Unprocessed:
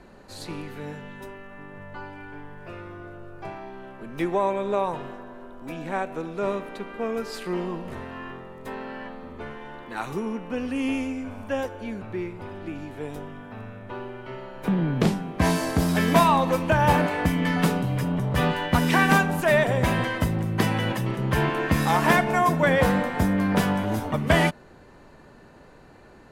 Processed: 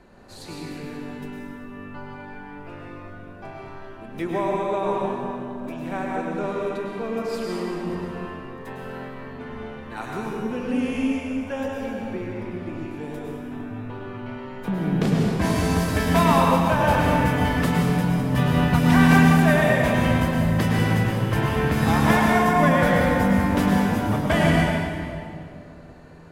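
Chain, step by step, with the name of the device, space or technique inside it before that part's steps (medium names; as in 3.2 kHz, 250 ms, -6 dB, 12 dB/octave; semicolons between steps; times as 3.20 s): stairwell (reverberation RT60 2.5 s, pre-delay 98 ms, DRR -2.5 dB); trim -3 dB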